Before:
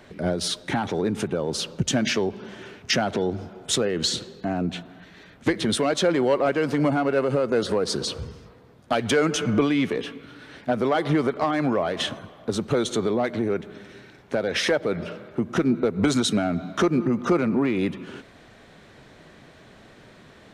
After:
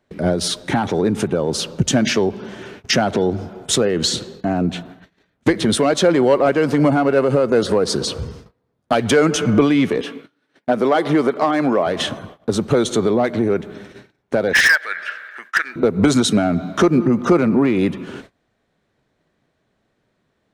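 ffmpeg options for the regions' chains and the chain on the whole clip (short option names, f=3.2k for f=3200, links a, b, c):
-filter_complex "[0:a]asettb=1/sr,asplit=3[a][b][c];[a]atrim=end=10.014[d];[b]atrim=start=10.01:end=11.87,asetpts=PTS-STARTPTS,afade=t=in:d=0.004:c=qsin,afade=t=out:st=1.856:d=0.004:c=qsin,agate=range=-33dB:threshold=-41dB:ratio=3:release=100:detection=peak,highpass=200[e];[c]atrim=start=11.866[f];[d][e]acrossfade=d=0.004:c1=hsin:c2=qsin[g];[g][f]acrossfade=d=0.004:c1=qsin:c2=hsin,asettb=1/sr,asplit=3[h][i][j];[h]atrim=end=14.534[k];[i]atrim=start=14.53:end=15.76,asetpts=PTS-STARTPTS,afade=t=in:d=0.004:c=qsin,afade=t=out:st=1.226:d=0.004:c=qsin,highpass=f=1.7k:t=q:w=10,asoftclip=type=hard:threshold=-14dB[l];[j]atrim=start=15.756[m];[k][l]acrossfade=d=0.004:c1=hsin:c2=qsin[n];[n][m]acrossfade=d=0.004:c1=qsin:c2=hsin,agate=range=-25dB:threshold=-44dB:ratio=16:detection=peak,equalizer=f=2.8k:w=0.6:g=-3,volume=7dB"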